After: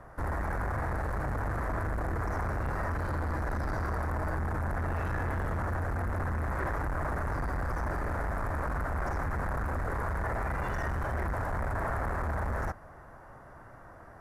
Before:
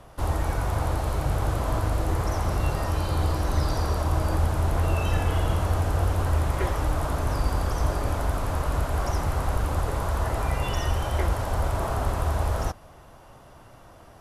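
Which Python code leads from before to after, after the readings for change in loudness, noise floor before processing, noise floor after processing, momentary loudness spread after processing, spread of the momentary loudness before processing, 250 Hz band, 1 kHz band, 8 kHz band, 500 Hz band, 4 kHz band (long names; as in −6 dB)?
−6.5 dB, −49 dBFS, −50 dBFS, 3 LU, 3 LU, −5.0 dB, −4.0 dB, −15.5 dB, −6.0 dB, −19.0 dB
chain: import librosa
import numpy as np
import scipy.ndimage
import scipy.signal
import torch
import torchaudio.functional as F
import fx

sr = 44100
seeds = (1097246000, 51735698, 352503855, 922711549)

y = np.clip(10.0 ** (28.0 / 20.0) * x, -1.0, 1.0) / 10.0 ** (28.0 / 20.0)
y = fx.high_shelf_res(y, sr, hz=2300.0, db=-9.5, q=3.0)
y = y * 10.0 ** (-2.0 / 20.0)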